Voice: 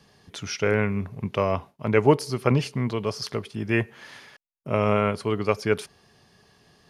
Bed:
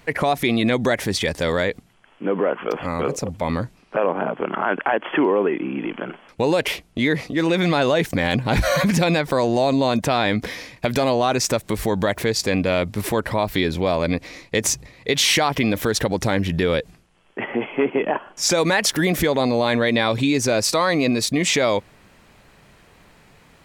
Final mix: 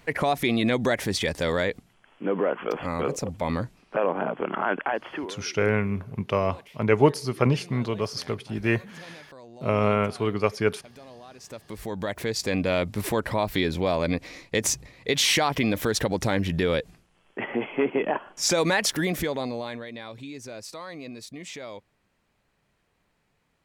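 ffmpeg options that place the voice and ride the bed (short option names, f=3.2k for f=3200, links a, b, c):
-filter_complex "[0:a]adelay=4950,volume=-0.5dB[a];[1:a]volume=19.5dB,afade=t=out:st=4.72:d=0.65:silence=0.0668344,afade=t=in:st=11.39:d=1.35:silence=0.0668344,afade=t=out:st=18.73:d=1.13:silence=0.158489[b];[a][b]amix=inputs=2:normalize=0"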